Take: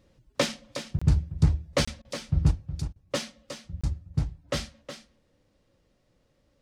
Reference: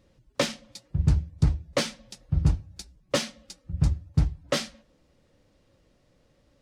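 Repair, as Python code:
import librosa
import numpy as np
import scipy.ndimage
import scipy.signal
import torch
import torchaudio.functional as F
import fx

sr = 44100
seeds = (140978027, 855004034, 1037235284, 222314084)

y = fx.fix_interpolate(x, sr, at_s=(0.99, 1.85, 3.81), length_ms=25.0)
y = fx.fix_interpolate(y, sr, at_s=(2.02, 2.93), length_ms=27.0)
y = fx.fix_echo_inverse(y, sr, delay_ms=365, level_db=-10.5)
y = fx.fix_level(y, sr, at_s=2.51, step_db=4.5)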